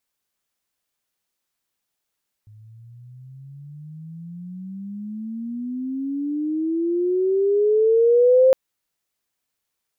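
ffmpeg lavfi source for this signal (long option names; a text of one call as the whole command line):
ffmpeg -f lavfi -i "aevalsrc='pow(10,(-10+33*(t/6.06-1))/20)*sin(2*PI*105*6.06/(28*log(2)/12)*(exp(28*log(2)/12*t/6.06)-1))':duration=6.06:sample_rate=44100" out.wav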